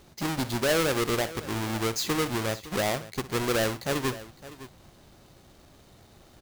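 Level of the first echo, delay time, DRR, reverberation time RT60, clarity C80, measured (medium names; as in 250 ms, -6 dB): -15.5 dB, 62 ms, no reverb, no reverb, no reverb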